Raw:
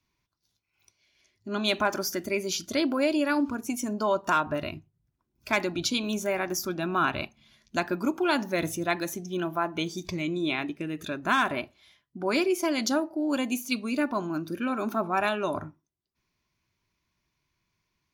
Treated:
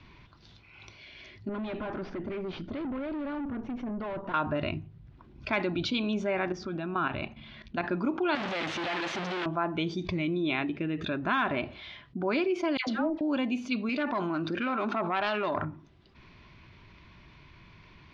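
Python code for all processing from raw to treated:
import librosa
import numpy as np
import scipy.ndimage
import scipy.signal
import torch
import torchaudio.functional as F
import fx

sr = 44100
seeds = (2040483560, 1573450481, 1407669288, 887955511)

y = fx.chain(x, sr, fx.tube_stage(drive_db=36.0, bias=0.4),
    fx.spacing_loss(db_at_10k=35), at=(1.49, 4.34))
y = fx.chain(y, sr, fx.level_steps(step_db=13),
    fx.air_absorb(metres=91.0), at=(6.52, 7.84))
y = fx.chain(y, sr, fx.clip_1bit(),
    fx.highpass(hz=710.0, slope=6), at=(8.35, 9.46))
y = fx.chain(y, sr, fx.law_mismatch(coded='A'),
    fx.dispersion(late='lows', ms=101.0, hz=1200.0), at=(12.77, 13.21))
y = fx.chain(y, sr, fx.self_delay(depth_ms=0.11),
    fx.low_shelf(hz=460.0, db=-10.5),
    fx.env_flatten(amount_pct=50), at=(13.89, 15.65))
y = scipy.signal.sosfilt(scipy.signal.butter(4, 3700.0, 'lowpass', fs=sr, output='sos'), y)
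y = fx.low_shelf(y, sr, hz=210.0, db=3.5)
y = fx.env_flatten(y, sr, amount_pct=50)
y = F.gain(torch.from_numpy(y), -4.5).numpy()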